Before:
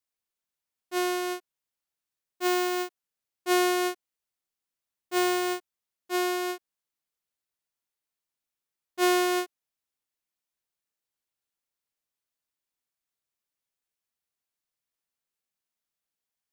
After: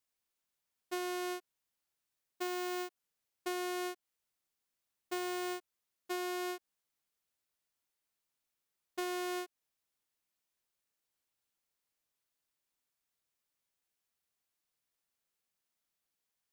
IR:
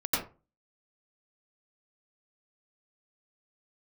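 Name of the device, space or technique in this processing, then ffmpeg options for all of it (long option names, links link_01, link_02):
serial compression, peaks first: -af "acompressor=threshold=-34dB:ratio=6,acompressor=threshold=-38dB:ratio=2.5,volume=1.5dB"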